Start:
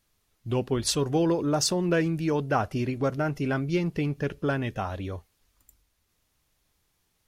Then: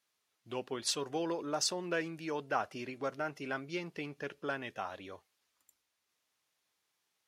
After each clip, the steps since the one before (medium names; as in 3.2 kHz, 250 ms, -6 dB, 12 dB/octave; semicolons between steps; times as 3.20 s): frequency weighting A; trim -6.5 dB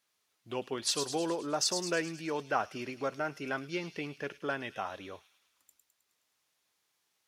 feedback echo behind a high-pass 105 ms, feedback 58%, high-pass 4.2 kHz, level -5 dB; trim +2.5 dB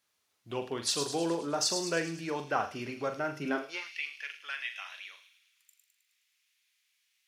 flutter echo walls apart 7.2 m, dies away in 0.3 s; high-pass sweep 64 Hz -> 2.3 kHz, 3.27–3.94 s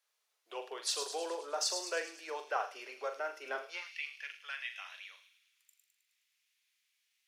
steep high-pass 430 Hz 36 dB/octave; trim -4 dB